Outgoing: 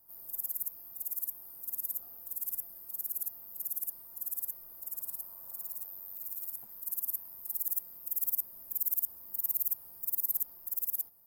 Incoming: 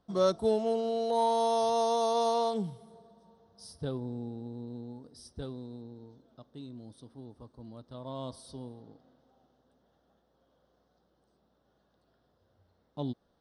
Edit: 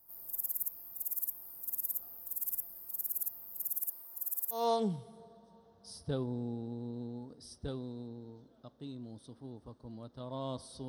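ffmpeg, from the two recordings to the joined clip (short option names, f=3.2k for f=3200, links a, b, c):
-filter_complex "[0:a]asettb=1/sr,asplit=3[a][b][c];[a]atrim=end=3.804[d];[b]atrim=start=3.8:end=4.7,asetpts=PTS-STARTPTS,afade=t=in:d=0.004:c=qsin,afade=t=out:st=0.896:d=0.004:c=qsin,highpass=270[e];[c]atrim=start=4.696[f];[d][e]acrossfade=d=0.004:c1=hsin:c2=qsin[g];[g][f]acrossfade=d=0.004:c1=qsin:c2=hsin,apad=whole_dur=10.88,atrim=end=10.88,atrim=end=4.7,asetpts=PTS-STARTPTS[h];[1:a]atrim=start=2.24:end=8.62,asetpts=PTS-STARTPTS[i];[h][i]acrossfade=d=0.2:c1=tri:c2=tri"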